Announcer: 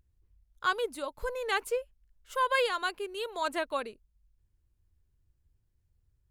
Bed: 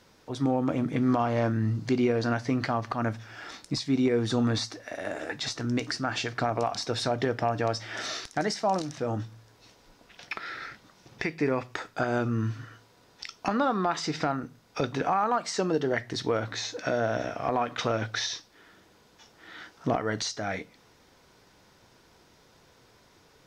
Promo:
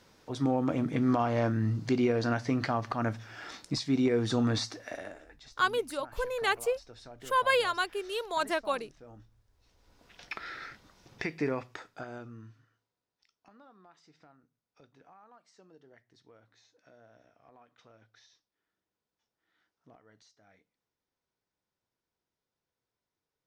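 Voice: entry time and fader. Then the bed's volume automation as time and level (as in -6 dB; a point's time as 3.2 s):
4.95 s, +1.5 dB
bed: 4.94 s -2 dB
5.28 s -21.5 dB
9.49 s -21.5 dB
10.06 s -4 dB
11.46 s -4 dB
13.06 s -31.5 dB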